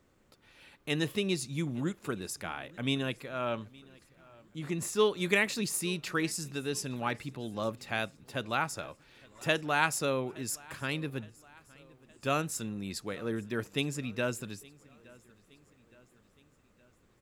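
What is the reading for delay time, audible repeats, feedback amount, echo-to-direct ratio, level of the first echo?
867 ms, 3, 54%, −22.5 dB, −24.0 dB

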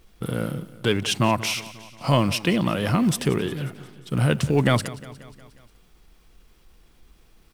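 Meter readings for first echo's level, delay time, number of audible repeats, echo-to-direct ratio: −18.0 dB, 179 ms, 4, −16.0 dB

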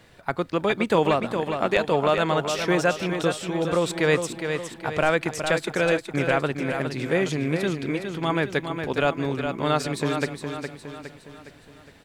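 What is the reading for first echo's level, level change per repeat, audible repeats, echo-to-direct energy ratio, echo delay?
−7.0 dB, −6.5 dB, 5, −6.0 dB, 412 ms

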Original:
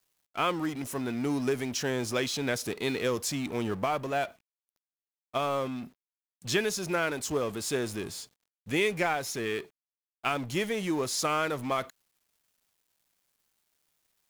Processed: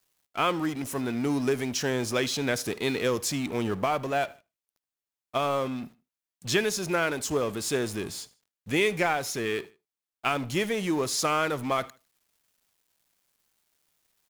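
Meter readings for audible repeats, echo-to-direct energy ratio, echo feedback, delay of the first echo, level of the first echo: 2, −21.5 dB, 35%, 77 ms, −22.0 dB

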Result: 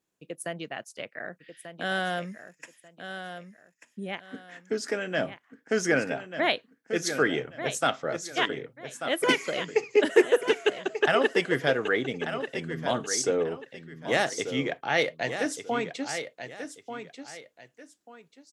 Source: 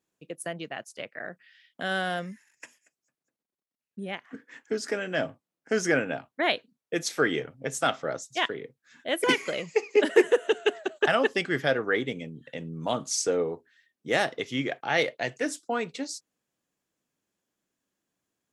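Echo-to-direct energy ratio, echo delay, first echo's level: −9.0 dB, 1,189 ms, −9.5 dB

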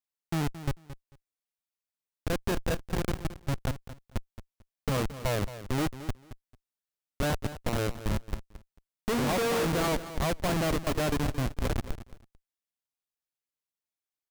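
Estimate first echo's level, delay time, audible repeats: −13.5 dB, 222 ms, 2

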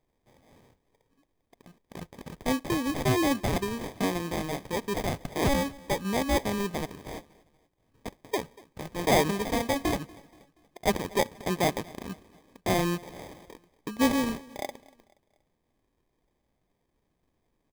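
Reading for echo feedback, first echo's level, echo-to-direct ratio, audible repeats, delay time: 45%, −23.0 dB, −22.0 dB, 2, 238 ms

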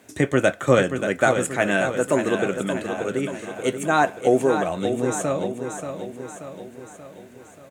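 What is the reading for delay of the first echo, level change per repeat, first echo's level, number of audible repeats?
582 ms, −5.5 dB, −8.0 dB, 6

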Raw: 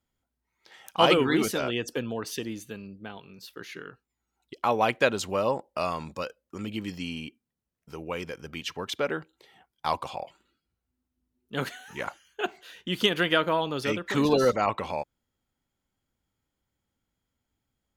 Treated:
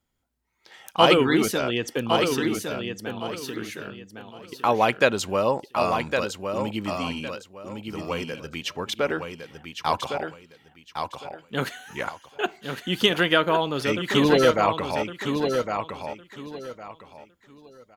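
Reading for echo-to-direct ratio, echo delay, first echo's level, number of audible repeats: −5.5 dB, 1,109 ms, −6.0 dB, 3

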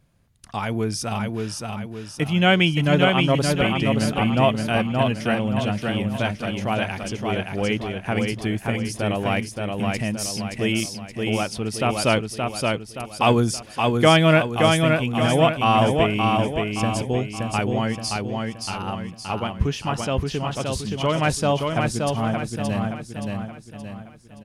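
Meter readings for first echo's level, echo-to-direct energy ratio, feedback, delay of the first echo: −3.5 dB, −2.5 dB, 45%, 573 ms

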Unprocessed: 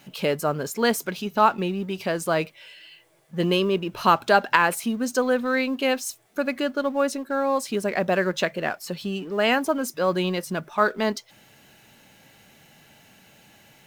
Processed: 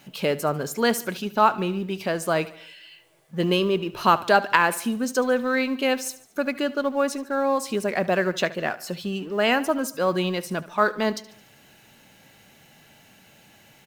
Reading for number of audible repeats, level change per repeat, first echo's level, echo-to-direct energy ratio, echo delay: 3, −6.0 dB, −18.0 dB, −16.5 dB, 73 ms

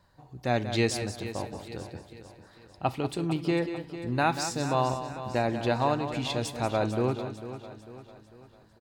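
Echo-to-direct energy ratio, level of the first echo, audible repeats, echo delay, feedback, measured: −7.5 dB, −10.0 dB, 7, 187 ms, repeats not evenly spaced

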